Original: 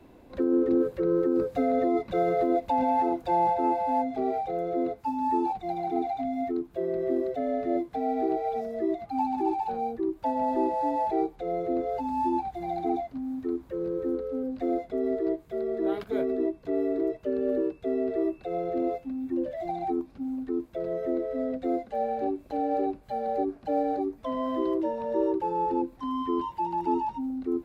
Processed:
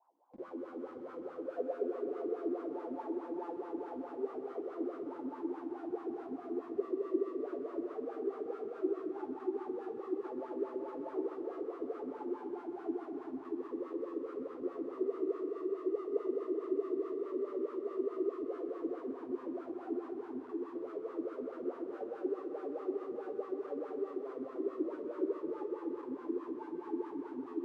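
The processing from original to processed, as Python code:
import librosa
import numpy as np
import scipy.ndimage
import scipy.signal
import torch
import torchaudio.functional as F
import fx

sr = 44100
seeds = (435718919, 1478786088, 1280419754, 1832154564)

p1 = fx.spec_trails(x, sr, decay_s=1.3)
p2 = scipy.signal.sosfilt(scipy.signal.butter(4, 100.0, 'highpass', fs=sr, output='sos'), p1)
p3 = fx.transient(p2, sr, attack_db=5, sustain_db=-1)
p4 = fx.filter_sweep_bandpass(p3, sr, from_hz=870.0, to_hz=400.0, start_s=1.13, end_s=1.9, q=6.2)
p5 = fx.schmitt(p4, sr, flips_db=-48.5)
p6 = p4 + (p5 * 10.0 ** (-5.0 / 20.0))
p7 = fx.wah_lfo(p6, sr, hz=4.7, low_hz=250.0, high_hz=1300.0, q=5.7)
y = p7 + fx.echo_heads(p7, sr, ms=128, heads='all three', feedback_pct=41, wet_db=-12.5, dry=0)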